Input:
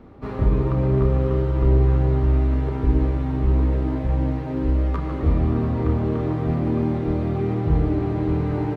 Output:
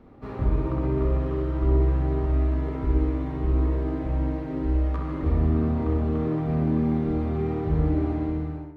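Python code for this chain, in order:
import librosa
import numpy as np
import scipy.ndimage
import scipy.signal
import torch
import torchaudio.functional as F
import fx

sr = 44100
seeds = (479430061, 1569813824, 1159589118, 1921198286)

y = fx.fade_out_tail(x, sr, length_s=0.66)
y = fx.echo_bbd(y, sr, ms=64, stages=1024, feedback_pct=48, wet_db=-3.0)
y = y * 10.0 ** (-6.0 / 20.0)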